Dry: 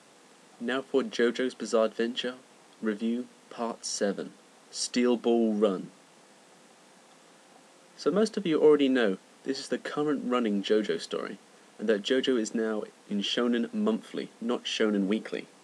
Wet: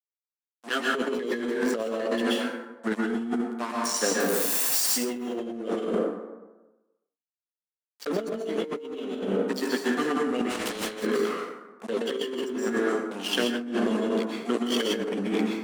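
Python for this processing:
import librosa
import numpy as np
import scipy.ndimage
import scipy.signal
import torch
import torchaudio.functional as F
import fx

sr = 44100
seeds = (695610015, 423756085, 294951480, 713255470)

y = fx.crossing_spikes(x, sr, level_db=-27.5, at=(4.2, 4.84))
y = y + 10.0 ** (-20.5 / 20.0) * np.pad(y, (int(299 * sr / 1000.0), 0))[:len(y)]
y = fx.env_flanger(y, sr, rest_ms=2.3, full_db=-21.5)
y = fx.high_shelf(y, sr, hz=8200.0, db=10.5)
y = fx.chorus_voices(y, sr, voices=2, hz=0.85, base_ms=15, depth_ms=3.1, mix_pct=40)
y = np.sign(y) * np.maximum(np.abs(y) - 10.0 ** (-41.0 / 20.0), 0.0)
y = scipy.signal.sosfilt(scipy.signal.butter(4, 210.0, 'highpass', fs=sr, output='sos'), y)
y = fx.peak_eq(y, sr, hz=1400.0, db=3.0, octaves=2.0)
y = fx.rev_plate(y, sr, seeds[0], rt60_s=1.1, hf_ratio=0.5, predelay_ms=110, drr_db=-3.5)
y = fx.over_compress(y, sr, threshold_db=-33.0, ratio=-1.0)
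y = fx.spectral_comp(y, sr, ratio=2.0, at=(10.49, 11.02), fade=0.02)
y = F.gain(torch.from_numpy(y), 5.0).numpy()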